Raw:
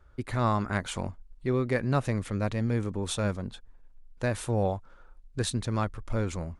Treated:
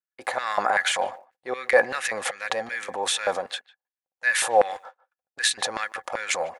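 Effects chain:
noise gate −43 dBFS, range −44 dB
transient designer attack −7 dB, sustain +8 dB
hollow resonant body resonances 520/770/1,700 Hz, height 11 dB, ringing for 60 ms
auto-filter high-pass square 2.6 Hz 720–1,900 Hz
far-end echo of a speakerphone 150 ms, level −21 dB
level +7 dB

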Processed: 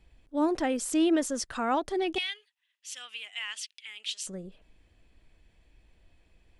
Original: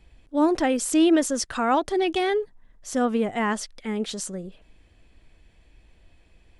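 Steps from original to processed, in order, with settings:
0:02.18–0:04.27: high-pass with resonance 2,800 Hz, resonance Q 4.2
level −6 dB

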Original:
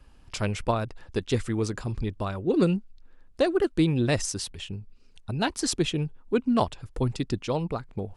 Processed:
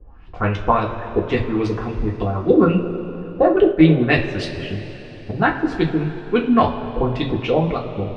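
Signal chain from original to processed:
auto-filter low-pass saw up 3.6 Hz 400–3,600 Hz
coupled-rooms reverb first 0.25 s, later 3.7 s, from −18 dB, DRR −2.5 dB
0:03.56–0:04.10: downward expander −17 dBFS
level +3.5 dB

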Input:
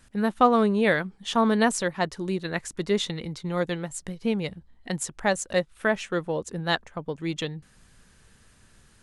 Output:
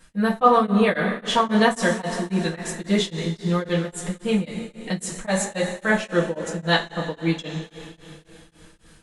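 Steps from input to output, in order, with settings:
coupled-rooms reverb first 0.2 s, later 3.3 s, from −19 dB, DRR −6 dB
tremolo along a rectified sine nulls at 3.7 Hz

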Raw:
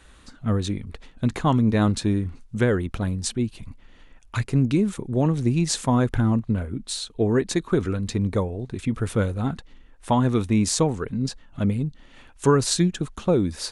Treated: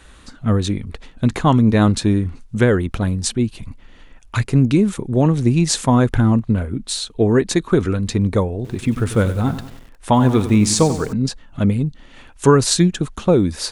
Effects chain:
0:08.55–0:11.13: feedback echo at a low word length 94 ms, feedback 55%, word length 7 bits, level −12 dB
level +6 dB

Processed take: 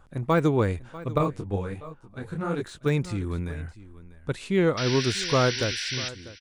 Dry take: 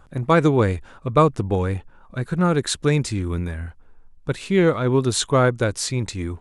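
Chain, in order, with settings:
fade-out on the ending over 0.92 s
de-essing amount 70%
0:04.86–0:05.64: parametric band 5,500 Hz +8 dB 1.6 octaves
0:04.77–0:06.09: sound drawn into the spectrogram noise 1,400–6,000 Hz −27 dBFS
single-tap delay 644 ms −18 dB
0:01.18–0:02.86: micro pitch shift up and down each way 47 cents
level −5 dB

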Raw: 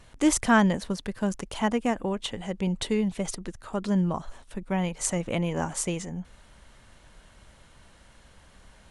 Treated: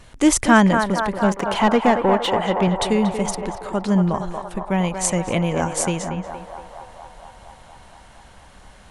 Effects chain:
0:01.24–0:02.68: mid-hump overdrive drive 19 dB, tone 1,400 Hz, clips at −13 dBFS
on a send: feedback echo with a band-pass in the loop 233 ms, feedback 80%, band-pass 880 Hz, level −4.5 dB
on the sum: level +6.5 dB

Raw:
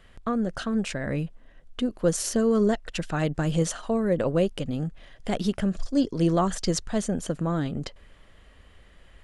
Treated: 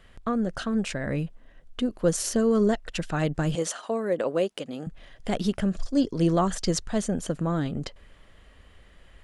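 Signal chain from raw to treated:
0:03.55–0:04.87: high-pass filter 320 Hz 12 dB per octave

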